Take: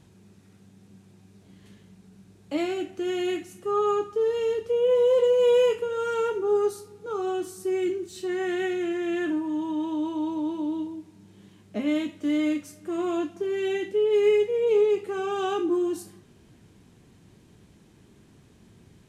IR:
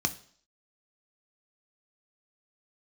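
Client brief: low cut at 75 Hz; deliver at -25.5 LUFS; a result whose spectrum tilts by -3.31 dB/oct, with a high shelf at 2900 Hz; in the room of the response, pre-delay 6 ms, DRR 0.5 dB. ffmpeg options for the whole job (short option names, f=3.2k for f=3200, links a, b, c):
-filter_complex "[0:a]highpass=75,highshelf=f=2.9k:g=4,asplit=2[a][b];[1:a]atrim=start_sample=2205,adelay=6[c];[b][c]afir=irnorm=-1:irlink=0,volume=-7dB[d];[a][d]amix=inputs=2:normalize=0,volume=-3dB"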